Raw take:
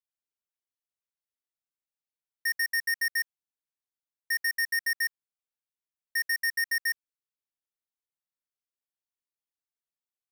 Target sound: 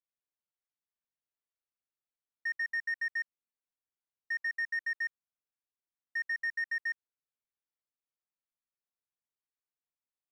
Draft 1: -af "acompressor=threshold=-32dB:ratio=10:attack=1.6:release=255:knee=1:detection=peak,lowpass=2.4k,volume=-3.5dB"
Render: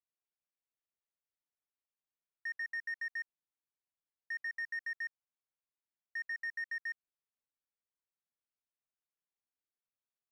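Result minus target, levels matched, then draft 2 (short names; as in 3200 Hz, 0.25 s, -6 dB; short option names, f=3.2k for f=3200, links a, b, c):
compressor: peak gain reduction +5.5 dB
-af "lowpass=2.4k,volume=-3.5dB"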